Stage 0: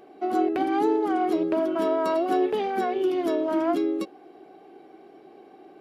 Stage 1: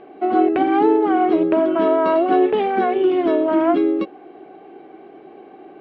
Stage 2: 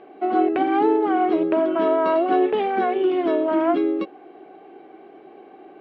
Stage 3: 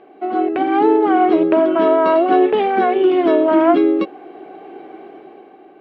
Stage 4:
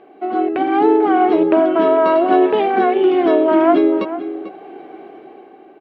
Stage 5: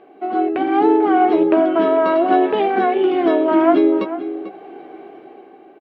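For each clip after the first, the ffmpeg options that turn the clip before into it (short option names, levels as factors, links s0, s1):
-af "lowpass=f=3200:w=0.5412,lowpass=f=3200:w=1.3066,volume=2.37"
-af "lowshelf=f=170:g=-8,volume=0.794"
-af "dynaudnorm=f=130:g=11:m=2.82"
-filter_complex "[0:a]asplit=2[s0][s1];[s1]adelay=443.1,volume=0.251,highshelf=f=4000:g=-9.97[s2];[s0][s2]amix=inputs=2:normalize=0"
-filter_complex "[0:a]asplit=2[s0][s1];[s1]adelay=15,volume=0.251[s2];[s0][s2]amix=inputs=2:normalize=0,volume=0.841"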